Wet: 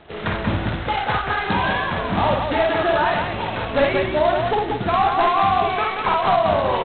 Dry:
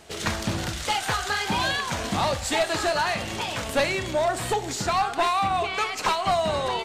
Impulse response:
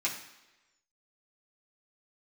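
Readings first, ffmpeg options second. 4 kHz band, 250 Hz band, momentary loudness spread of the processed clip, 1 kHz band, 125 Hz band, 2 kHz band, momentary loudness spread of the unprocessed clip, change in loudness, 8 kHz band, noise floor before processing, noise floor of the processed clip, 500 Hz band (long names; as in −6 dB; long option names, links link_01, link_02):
−1.0 dB, +6.5 dB, 6 LU, +6.5 dB, +6.0 dB, +4.0 dB, 5 LU, +5.0 dB, below −40 dB, −33 dBFS, −28 dBFS, +6.5 dB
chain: -af "lowpass=1800,aecho=1:1:52.48|183.7:0.794|0.631,volume=3.5dB" -ar 8000 -c:a adpcm_g726 -b:a 16k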